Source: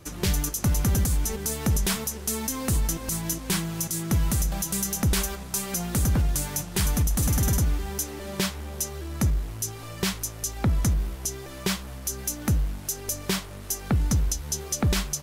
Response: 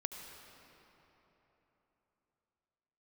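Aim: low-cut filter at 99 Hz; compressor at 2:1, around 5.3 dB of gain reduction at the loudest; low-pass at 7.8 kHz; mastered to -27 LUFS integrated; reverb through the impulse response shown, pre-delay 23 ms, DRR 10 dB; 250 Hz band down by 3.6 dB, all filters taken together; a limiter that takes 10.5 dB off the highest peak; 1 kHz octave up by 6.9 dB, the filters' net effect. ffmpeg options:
-filter_complex "[0:a]highpass=99,lowpass=7800,equalizer=f=250:t=o:g=-5.5,equalizer=f=1000:t=o:g=9,acompressor=threshold=0.0224:ratio=2,alimiter=level_in=1.12:limit=0.0631:level=0:latency=1,volume=0.891,asplit=2[s0][s1];[1:a]atrim=start_sample=2205,adelay=23[s2];[s1][s2]afir=irnorm=-1:irlink=0,volume=0.335[s3];[s0][s3]amix=inputs=2:normalize=0,volume=2.66"

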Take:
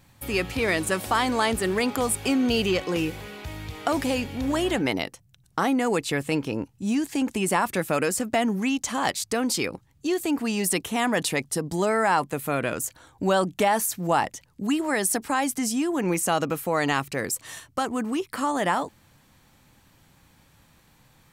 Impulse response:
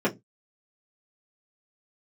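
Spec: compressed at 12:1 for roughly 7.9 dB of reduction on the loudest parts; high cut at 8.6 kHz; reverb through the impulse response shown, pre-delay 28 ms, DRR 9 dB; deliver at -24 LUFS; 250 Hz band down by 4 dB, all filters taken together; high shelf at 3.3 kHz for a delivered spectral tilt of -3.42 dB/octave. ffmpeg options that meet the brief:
-filter_complex "[0:a]lowpass=8600,equalizer=f=250:t=o:g=-5,highshelf=f=3300:g=5,acompressor=threshold=0.0562:ratio=12,asplit=2[s0][s1];[1:a]atrim=start_sample=2205,adelay=28[s2];[s1][s2]afir=irnorm=-1:irlink=0,volume=0.0794[s3];[s0][s3]amix=inputs=2:normalize=0,volume=1.88"

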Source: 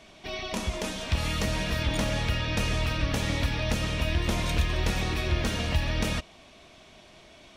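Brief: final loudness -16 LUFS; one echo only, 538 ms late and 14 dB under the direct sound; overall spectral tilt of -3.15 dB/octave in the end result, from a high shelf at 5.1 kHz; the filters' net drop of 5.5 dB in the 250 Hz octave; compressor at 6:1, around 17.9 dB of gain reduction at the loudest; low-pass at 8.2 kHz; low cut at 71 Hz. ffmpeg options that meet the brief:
-af "highpass=71,lowpass=8200,equalizer=f=250:t=o:g=-8,highshelf=f=5100:g=8.5,acompressor=threshold=0.00631:ratio=6,aecho=1:1:538:0.2,volume=28.2"

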